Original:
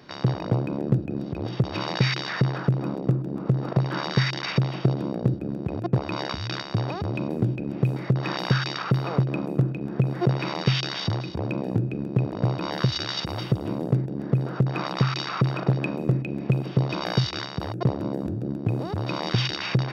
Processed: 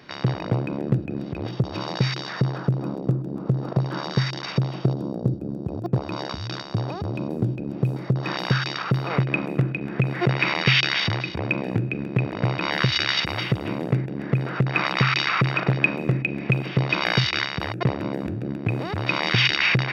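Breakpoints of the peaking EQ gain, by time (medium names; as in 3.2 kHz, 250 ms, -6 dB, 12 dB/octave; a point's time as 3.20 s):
peaking EQ 2.2 kHz 1.3 oct
+6 dB
from 1.51 s -4.5 dB
from 4.93 s -14 dB
from 5.86 s -4 dB
from 8.26 s +3.5 dB
from 9.10 s +15 dB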